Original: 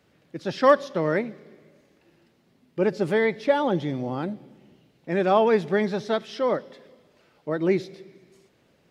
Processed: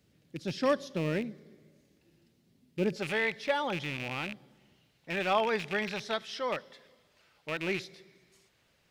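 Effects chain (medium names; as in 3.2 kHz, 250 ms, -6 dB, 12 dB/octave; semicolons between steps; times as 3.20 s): rattle on loud lows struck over -31 dBFS, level -24 dBFS; peaking EQ 1 kHz -13.5 dB 3 oct, from 2.96 s 300 Hz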